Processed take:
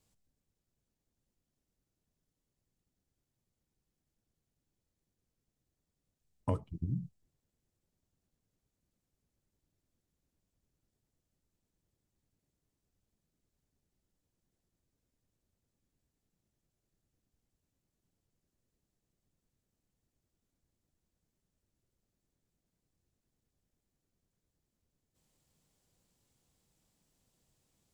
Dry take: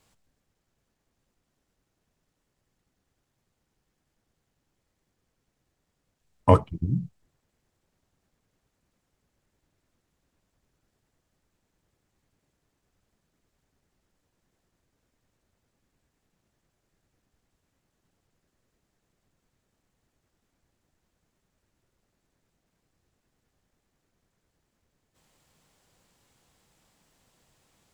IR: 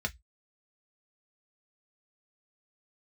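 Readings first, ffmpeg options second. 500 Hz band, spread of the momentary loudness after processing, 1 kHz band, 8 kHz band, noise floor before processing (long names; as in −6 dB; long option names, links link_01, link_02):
−18.5 dB, 6 LU, −20.0 dB, can't be measured, −79 dBFS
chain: -af "equalizer=frequency=1400:width_type=o:width=2.9:gain=-9.5,acompressor=threshold=-23dB:ratio=4,volume=-6.5dB"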